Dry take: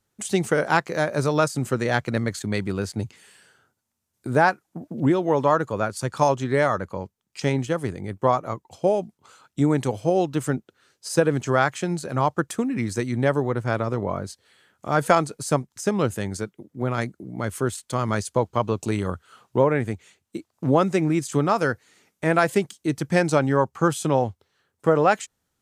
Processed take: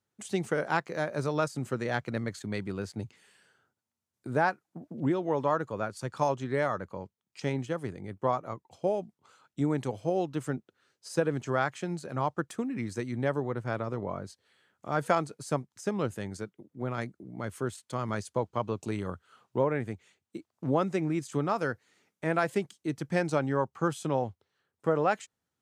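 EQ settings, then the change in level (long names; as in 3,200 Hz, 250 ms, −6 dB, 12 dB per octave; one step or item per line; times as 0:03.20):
high-pass filter 83 Hz
high-shelf EQ 6,600 Hz −7 dB
−8.0 dB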